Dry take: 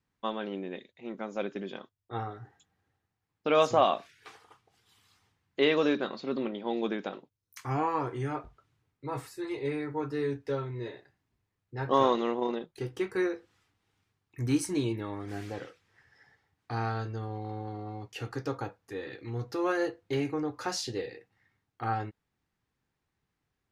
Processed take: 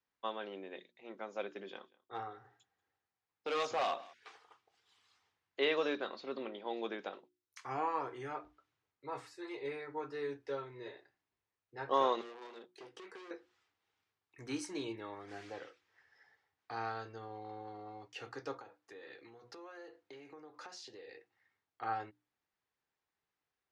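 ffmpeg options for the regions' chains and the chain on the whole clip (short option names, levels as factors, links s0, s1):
-filter_complex "[0:a]asettb=1/sr,asplit=3[s0][s1][s2];[s0]atrim=end=1.634[s3];[s1]atrim=start=1.63:end=4.14,asetpts=PTS-STARTPTS,afade=t=in:d=0.004:c=qsin,afade=t=out:st=2.506:d=0.004:c=qsin,bandreject=f=620:w=13,aecho=1:1:188:0.0631,atrim=end_sample=110691,volume=16.8,asoftclip=hard,volume=0.0596[s4];[s2]atrim=start=4.136[s5];[s3][s4]acrossfade=d=0.004:c1=hsin:c2=qsin[s6];[s6][s5]acrossfade=d=0.004:c1=qsin:c2=hsin,asettb=1/sr,asplit=3[s7][s8][s9];[s7]atrim=end=12.214[s10];[s8]atrim=start=12.21:end=13.31,asetpts=PTS-STARTPTS,afade=t=in:d=0.004:c=qsin,afade=t=out:st=1.096:d=0.004:c=qsin,volume=53.1,asoftclip=hard,volume=0.0188,highpass=210,acompressor=threshold=0.0126:ratio=6:attack=3.2:release=140:knee=1:detection=peak[s11];[s9]atrim=start=13.306[s12];[s10][s11]acrossfade=d=0.004:c1=hsin:c2=qsin[s13];[s13][s12]acrossfade=d=0.004:c1=qsin:c2=hsin,asettb=1/sr,asplit=3[s14][s15][s16];[s14]atrim=end=18.574[s17];[s15]atrim=start=18.57:end=21.09,asetpts=PTS-STARTPTS,afade=t=in:d=0.004:c=qsin,afade=t=out:st=2.516:d=0.004:c=qsin,highpass=110,acompressor=threshold=0.01:ratio=10:attack=3.2:release=140:knee=1:detection=peak[s18];[s16]atrim=start=21.086[s19];[s17][s18]acrossfade=d=0.004:c1=hsin:c2=qsin[s20];[s20][s19]acrossfade=d=0.004:c1=qsin:c2=hsin,acrossover=split=350 7800:gain=0.2 1 0.0794[s21][s22][s23];[s21][s22][s23]amix=inputs=3:normalize=0,bandreject=f=60:t=h:w=6,bandreject=f=120:t=h:w=6,bandreject=f=180:t=h:w=6,bandreject=f=240:t=h:w=6,bandreject=f=300:t=h:w=6,bandreject=f=360:t=h:w=6,volume=0.562"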